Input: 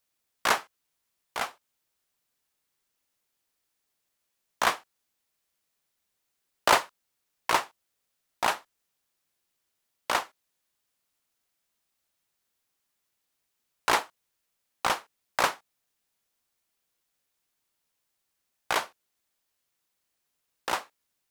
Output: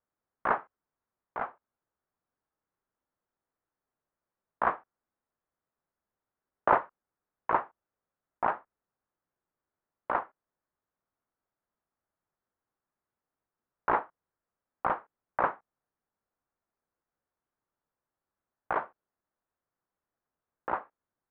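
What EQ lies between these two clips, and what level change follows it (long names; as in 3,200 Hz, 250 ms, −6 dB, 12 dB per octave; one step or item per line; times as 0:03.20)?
low-pass filter 1,500 Hz 24 dB per octave
−1.0 dB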